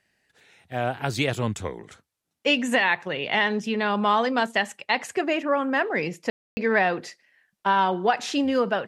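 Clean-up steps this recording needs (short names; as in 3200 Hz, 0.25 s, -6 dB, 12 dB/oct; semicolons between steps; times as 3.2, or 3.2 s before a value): room tone fill 6.3–6.57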